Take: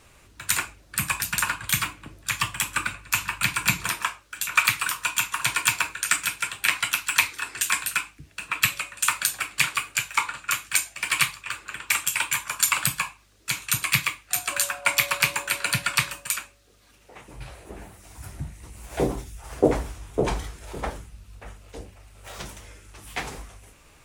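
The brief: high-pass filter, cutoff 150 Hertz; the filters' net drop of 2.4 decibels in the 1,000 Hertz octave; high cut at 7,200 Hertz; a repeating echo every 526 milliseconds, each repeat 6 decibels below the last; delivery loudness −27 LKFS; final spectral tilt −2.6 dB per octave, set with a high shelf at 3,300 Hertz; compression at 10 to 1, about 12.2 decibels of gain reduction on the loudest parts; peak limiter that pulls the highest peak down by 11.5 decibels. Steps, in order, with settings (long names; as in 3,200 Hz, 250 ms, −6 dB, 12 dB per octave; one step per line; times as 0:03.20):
high-pass filter 150 Hz
low-pass filter 7,200 Hz
parametric band 1,000 Hz −4 dB
high-shelf EQ 3,300 Hz +6 dB
downward compressor 10 to 1, threshold −28 dBFS
brickwall limiter −19.5 dBFS
repeating echo 526 ms, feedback 50%, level −6 dB
level +8 dB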